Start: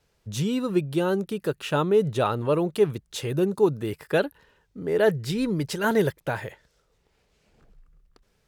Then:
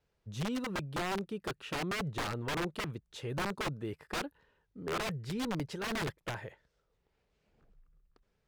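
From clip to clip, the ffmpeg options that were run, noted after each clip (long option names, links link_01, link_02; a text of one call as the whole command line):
ffmpeg -i in.wav -af "aeval=exprs='(mod(8.91*val(0)+1,2)-1)/8.91':channel_layout=same,aemphasis=mode=reproduction:type=50kf,volume=-9dB" out.wav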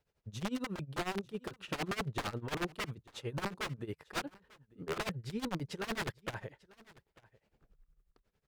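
ffmpeg -i in.wav -af "tremolo=f=11:d=0.87,aecho=1:1:894:0.075,volume=1.5dB" out.wav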